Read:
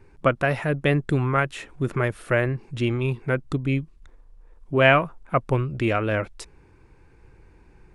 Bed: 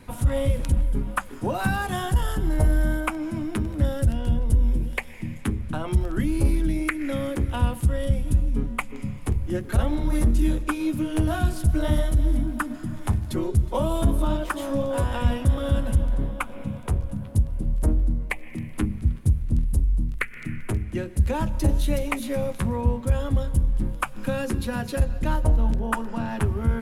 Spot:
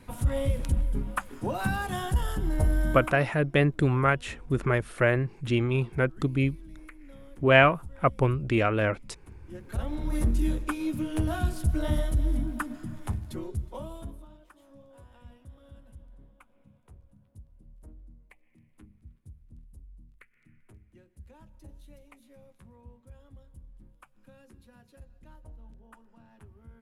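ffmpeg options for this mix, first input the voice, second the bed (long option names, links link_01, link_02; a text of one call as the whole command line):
ffmpeg -i stem1.wav -i stem2.wav -filter_complex "[0:a]adelay=2700,volume=-1.5dB[link_01];[1:a]volume=14dB,afade=type=out:start_time=2.91:duration=0.38:silence=0.112202,afade=type=in:start_time=9.38:duration=0.87:silence=0.11885,afade=type=out:start_time=12.55:duration=1.73:silence=0.0668344[link_02];[link_01][link_02]amix=inputs=2:normalize=0" out.wav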